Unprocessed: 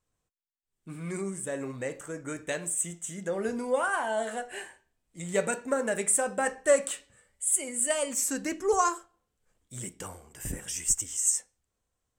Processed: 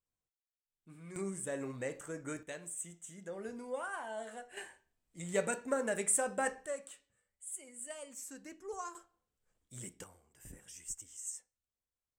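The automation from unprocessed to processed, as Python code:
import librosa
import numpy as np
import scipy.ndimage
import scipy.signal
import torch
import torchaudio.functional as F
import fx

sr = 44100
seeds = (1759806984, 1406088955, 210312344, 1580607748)

y = fx.gain(x, sr, db=fx.steps((0.0, -14.0), (1.16, -5.0), (2.43, -12.5), (4.57, -5.5), (6.66, -18.0), (8.95, -8.0), (10.04, -17.0)))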